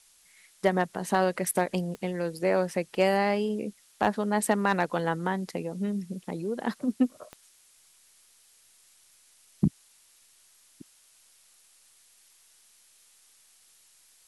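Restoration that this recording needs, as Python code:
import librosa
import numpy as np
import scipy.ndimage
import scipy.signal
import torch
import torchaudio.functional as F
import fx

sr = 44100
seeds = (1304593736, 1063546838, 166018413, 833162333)

y = fx.fix_declip(x, sr, threshold_db=-12.0)
y = fx.fix_declick_ar(y, sr, threshold=10.0)
y = fx.noise_reduce(y, sr, print_start_s=9.88, print_end_s=10.38, reduce_db=13.0)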